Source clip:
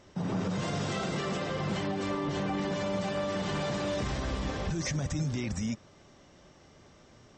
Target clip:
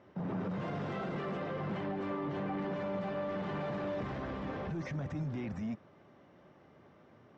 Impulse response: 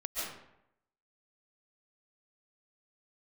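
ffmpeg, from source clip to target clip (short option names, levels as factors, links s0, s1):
-filter_complex "[0:a]highpass=120,asplit=2[s0][s1];[s1]aeval=exprs='0.0178*(abs(mod(val(0)/0.0178+3,4)-2)-1)':c=same,volume=0.376[s2];[s0][s2]amix=inputs=2:normalize=0,lowpass=1900,volume=0.596"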